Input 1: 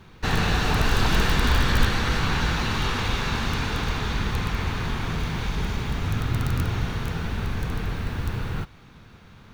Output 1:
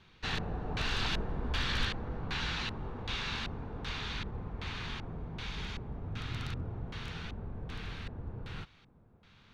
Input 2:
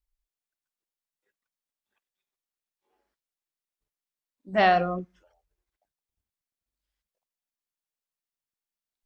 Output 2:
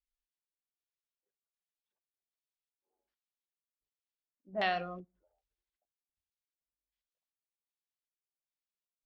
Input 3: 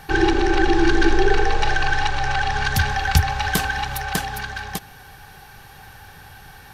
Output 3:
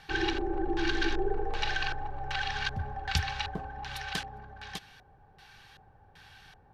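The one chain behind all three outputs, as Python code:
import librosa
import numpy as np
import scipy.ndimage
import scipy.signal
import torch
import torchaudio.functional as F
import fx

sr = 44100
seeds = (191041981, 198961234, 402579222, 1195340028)

y = fx.filter_lfo_lowpass(x, sr, shape='square', hz=1.3, low_hz=650.0, high_hz=3500.0, q=1.2)
y = librosa.effects.preemphasis(y, coef=0.8, zi=[0.0])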